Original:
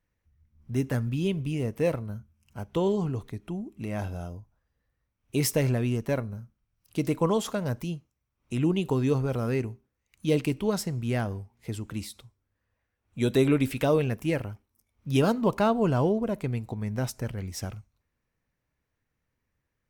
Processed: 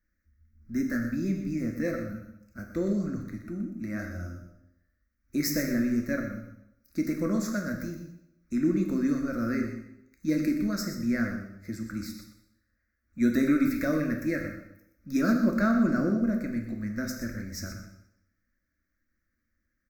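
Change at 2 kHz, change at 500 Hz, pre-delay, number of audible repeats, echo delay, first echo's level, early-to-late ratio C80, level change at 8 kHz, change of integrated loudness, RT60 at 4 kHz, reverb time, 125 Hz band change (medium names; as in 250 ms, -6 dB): +3.0 dB, -7.0 dB, 4 ms, 1, 123 ms, -10.5 dB, 7.0 dB, -2.0 dB, -1.0 dB, 0.75 s, 0.85 s, -7.5 dB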